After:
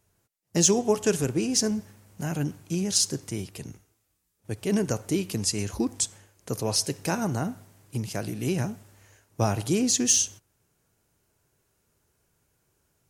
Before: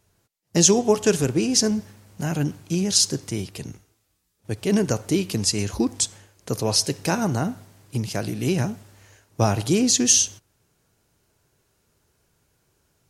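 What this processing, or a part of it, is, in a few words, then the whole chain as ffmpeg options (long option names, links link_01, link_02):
exciter from parts: -filter_complex "[0:a]asplit=2[link_01][link_02];[link_02]highpass=4000,asoftclip=type=tanh:threshold=-13dB,highpass=3200,volume=-7dB[link_03];[link_01][link_03]amix=inputs=2:normalize=0,volume=-4.5dB"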